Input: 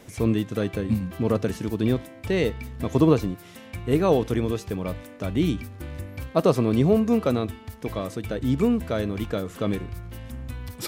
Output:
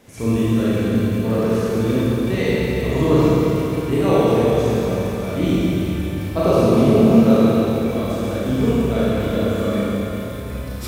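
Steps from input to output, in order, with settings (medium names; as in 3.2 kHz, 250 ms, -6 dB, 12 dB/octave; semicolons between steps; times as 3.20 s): Schroeder reverb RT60 3.8 s, combs from 27 ms, DRR -10 dB; trim -3.5 dB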